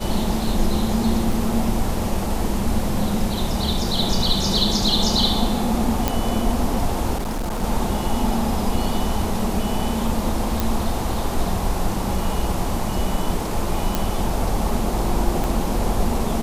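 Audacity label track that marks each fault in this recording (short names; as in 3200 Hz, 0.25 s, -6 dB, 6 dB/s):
1.320000	1.320000	gap 2.9 ms
6.080000	6.080000	pop -4 dBFS
7.170000	7.640000	clipped -21.5 dBFS
10.600000	10.600000	pop
13.950000	13.950000	pop
15.440000	15.440000	pop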